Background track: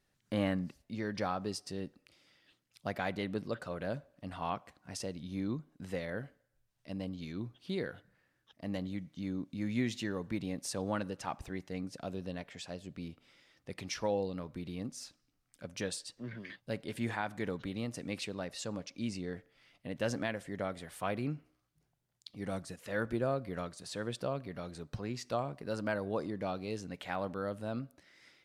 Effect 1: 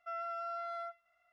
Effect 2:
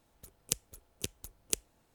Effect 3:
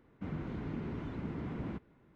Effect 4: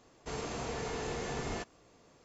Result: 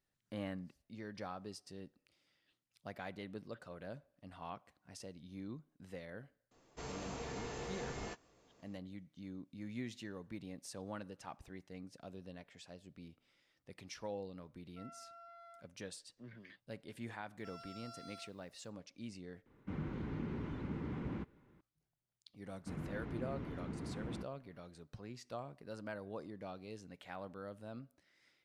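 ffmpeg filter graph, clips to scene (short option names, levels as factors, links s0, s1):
-filter_complex "[1:a]asplit=2[s0][s1];[3:a]asplit=2[s2][s3];[0:a]volume=0.299[s4];[4:a]asplit=2[s5][s6];[s6]adelay=15,volume=0.237[s7];[s5][s7]amix=inputs=2:normalize=0[s8];[s1]aexciter=amount=12.5:drive=5.9:freq=3400[s9];[s2]bandreject=f=680:w=8.7[s10];[s4]asplit=2[s11][s12];[s11]atrim=end=19.464[s13];[s10]atrim=end=2.15,asetpts=PTS-STARTPTS,volume=0.794[s14];[s12]atrim=start=21.606[s15];[s8]atrim=end=2.24,asetpts=PTS-STARTPTS,volume=0.447,afade=t=in:d=0.004:c=hsin,afade=t=out:st=2.236:d=0.004:c=hsin,adelay=6510[s16];[s0]atrim=end=1.32,asetpts=PTS-STARTPTS,volume=0.158,afade=t=in:d=0.004:c=hsin,afade=t=out:st=1.316:d=0.004:c=hsin,adelay=14700[s17];[s9]atrim=end=1.32,asetpts=PTS-STARTPTS,volume=0.188,afade=t=in:d=0.004:c=hsin,afade=t=out:st=1.316:d=0.004:c=hsin,adelay=17380[s18];[s3]atrim=end=2.15,asetpts=PTS-STARTPTS,volume=0.596,afade=t=in:d=0.004:c=hsin,afade=t=out:st=2.146:d=0.004:c=hsin,adelay=22450[s19];[s13][s14]acrossfade=d=0.004:c1=hsin:c2=hsin[s20];[s20][s15]acrossfade=d=0.004:c1=hsin:c2=hsin[s21];[s21][s16][s17][s18][s19]amix=inputs=5:normalize=0"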